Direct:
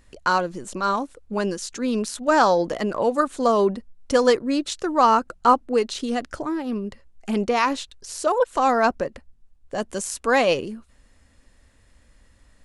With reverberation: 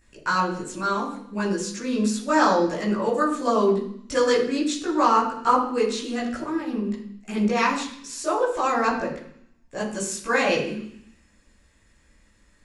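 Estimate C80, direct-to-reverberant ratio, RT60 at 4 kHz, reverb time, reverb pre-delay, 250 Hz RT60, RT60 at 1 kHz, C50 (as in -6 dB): 9.5 dB, -7.0 dB, 0.85 s, 0.65 s, 14 ms, 0.85 s, 0.65 s, 6.0 dB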